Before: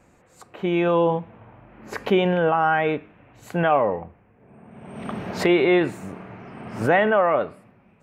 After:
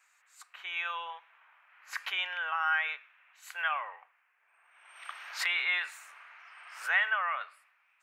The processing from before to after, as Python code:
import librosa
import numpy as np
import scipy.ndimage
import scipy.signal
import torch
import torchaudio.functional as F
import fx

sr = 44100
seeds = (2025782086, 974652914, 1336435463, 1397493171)

y = scipy.signal.sosfilt(scipy.signal.butter(4, 1300.0, 'highpass', fs=sr, output='sos'), x)
y = y * 10.0 ** (-2.0 / 20.0)